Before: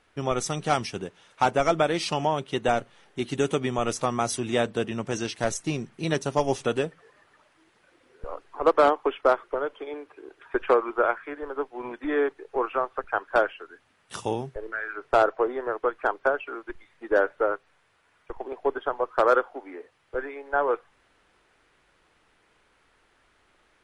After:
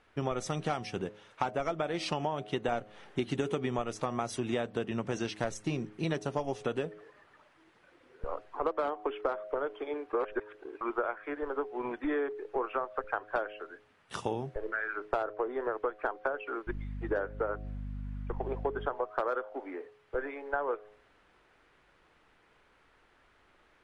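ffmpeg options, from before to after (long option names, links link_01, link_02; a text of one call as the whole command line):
ffmpeg -i in.wav -filter_complex "[0:a]asettb=1/sr,asplit=3[link_01][link_02][link_03];[link_01]atrim=end=2.724[link_04];[link_02]atrim=start=2.72:end=3.82,asetpts=PTS-STARTPTS,afade=type=in:duration=0.004:curve=qsin,afade=type=out:start_time=1.096:duration=0.004:curve=qsin,acontrast=30[link_05];[link_03]atrim=start=3.816[link_06];[link_04][link_05]acrossfade=duration=0.004:curve1=hsin:curve2=qsin[link_07];[link_07][link_06]acrossfade=duration=0.004:curve1=qsin:curve2=hsin,asettb=1/sr,asplit=3[link_08][link_09][link_10];[link_08]atrim=end=16.674[link_11];[link_09]atrim=start=16.67:end=18.87,asetpts=PTS-STARTPTS,afade=type=in:duration=0.004:curve=qsin,afade=type=out:start_time=2.196:duration=0.004:curve=qsin,aeval=exprs='val(0)+0.0141*(sin(2*PI*50*n/s)+sin(2*PI*2*50*n/s)/2+sin(2*PI*3*50*n/s)/3+sin(2*PI*4*50*n/s)/4+sin(2*PI*5*50*n/s)/5)':channel_layout=same[link_12];[link_10]atrim=start=18.866[link_13];[link_11][link_12]acrossfade=duration=0.004:curve1=hsin:curve2=qsin[link_14];[link_14][link_13]acrossfade=duration=0.004:curve1=qsin:curve2=hsin,asplit=3[link_15][link_16][link_17];[link_15]atrim=end=10.132[link_18];[link_16]atrim=start=10.128:end=10.812,asetpts=PTS-STARTPTS,areverse[link_19];[link_17]atrim=start=10.808[link_20];[link_18][link_19]acrossfade=duration=0.004:curve1=hsin:curve2=hsin[link_21];[link_21][link_20]acrossfade=duration=0.004:curve1=hsin:curve2=hsin,highshelf=frequency=5400:gain=-11.5,bandreject=frequency=105.3:width_type=h:width=4,bandreject=frequency=210.6:width_type=h:width=4,bandreject=frequency=315.9:width_type=h:width=4,bandreject=frequency=421.2:width_type=h:width=4,bandreject=frequency=526.5:width_type=h:width=4,bandreject=frequency=631.8:width_type=h:width=4,bandreject=frequency=737.1:width_type=h:width=4,acompressor=threshold=-28dB:ratio=10" out.wav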